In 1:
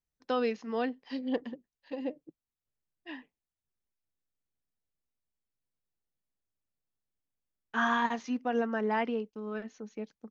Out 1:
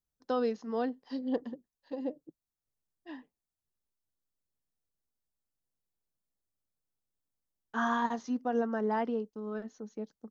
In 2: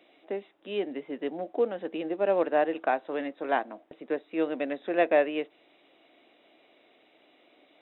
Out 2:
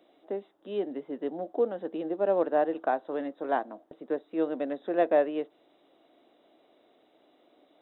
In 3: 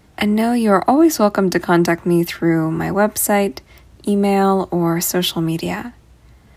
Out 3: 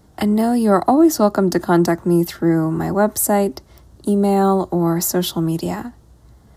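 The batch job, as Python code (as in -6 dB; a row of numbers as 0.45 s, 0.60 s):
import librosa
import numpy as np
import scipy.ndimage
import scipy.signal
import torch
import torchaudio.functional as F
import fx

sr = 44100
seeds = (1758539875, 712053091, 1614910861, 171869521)

y = fx.peak_eq(x, sr, hz=2400.0, db=-13.5, octaves=0.87)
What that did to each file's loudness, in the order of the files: -1.0 LU, -0.5 LU, -0.5 LU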